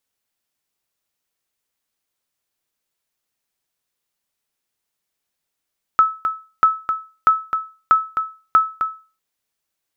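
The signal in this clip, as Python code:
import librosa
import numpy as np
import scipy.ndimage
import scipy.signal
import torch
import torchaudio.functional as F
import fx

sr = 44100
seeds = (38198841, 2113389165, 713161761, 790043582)

y = fx.sonar_ping(sr, hz=1300.0, decay_s=0.34, every_s=0.64, pings=5, echo_s=0.26, echo_db=-8.0, level_db=-5.0)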